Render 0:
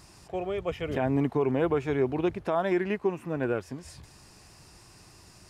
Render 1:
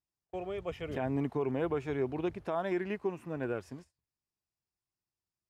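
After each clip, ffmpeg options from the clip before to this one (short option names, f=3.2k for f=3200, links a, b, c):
-af "agate=range=-37dB:threshold=-41dB:ratio=16:detection=peak,volume=-6.5dB"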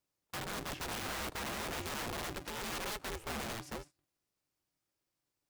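-filter_complex "[0:a]acrossover=split=220|3000[a][b][c];[b]acompressor=threshold=-46dB:ratio=5[d];[a][d][c]amix=inputs=3:normalize=0,aeval=exprs='(mod(106*val(0)+1,2)-1)/106':c=same,aeval=exprs='val(0)*sgn(sin(2*PI*220*n/s))':c=same,volume=6dB"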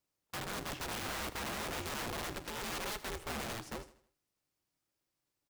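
-af "aecho=1:1:79|158|237|316:0.158|0.065|0.0266|0.0109"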